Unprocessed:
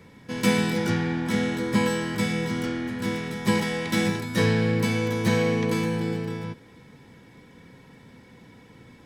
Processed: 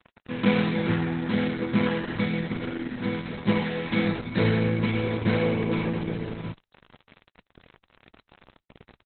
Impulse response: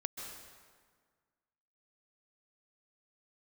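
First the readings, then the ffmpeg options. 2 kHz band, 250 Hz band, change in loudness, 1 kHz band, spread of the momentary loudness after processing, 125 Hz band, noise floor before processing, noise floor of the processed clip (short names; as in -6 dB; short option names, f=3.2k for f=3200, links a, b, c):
-2.5 dB, -0.5 dB, -1.0 dB, -2.5 dB, 9 LU, -0.5 dB, -51 dBFS, -80 dBFS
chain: -af "acrusher=bits=6:mix=0:aa=0.000001" -ar 48000 -c:a libopus -b:a 8k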